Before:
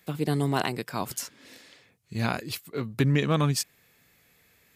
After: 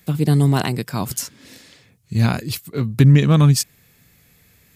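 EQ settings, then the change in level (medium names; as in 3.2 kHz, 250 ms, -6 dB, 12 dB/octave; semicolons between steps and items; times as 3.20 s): tone controls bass +11 dB, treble +5 dB; +3.5 dB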